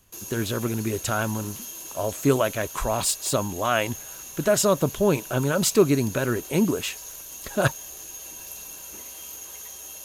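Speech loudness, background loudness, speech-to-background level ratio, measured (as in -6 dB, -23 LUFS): -24.5 LUFS, -36.5 LUFS, 12.0 dB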